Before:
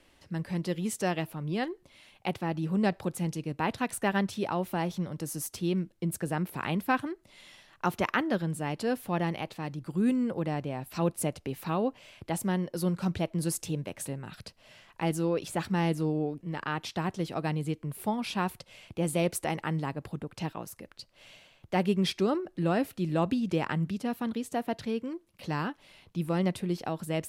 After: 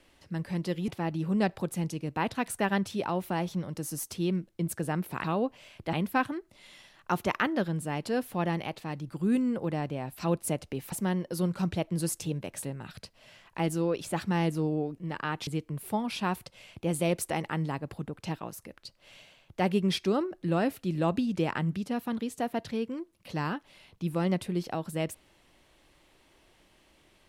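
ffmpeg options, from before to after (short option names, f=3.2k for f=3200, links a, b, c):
-filter_complex "[0:a]asplit=6[a][b][c][d][e][f];[a]atrim=end=0.882[g];[b]atrim=start=2.308:end=6.672[h];[c]atrim=start=11.658:end=12.352[i];[d]atrim=start=6.668:end=11.662[j];[e]atrim=start=12.348:end=16.902[k];[f]atrim=start=17.608[l];[g][h]acrossfade=d=0.004:c1=hsin:c2=hsin[m];[m][i]acrossfade=d=0.004:c1=hsin:c2=hsin[n];[n][j]acrossfade=d=0.004:c1=hsin:c2=hsin[o];[o][k]acrossfade=d=0.004:c1=hsin:c2=hsin[p];[p][l]acrossfade=d=0.004:c1=hsin:c2=hsin"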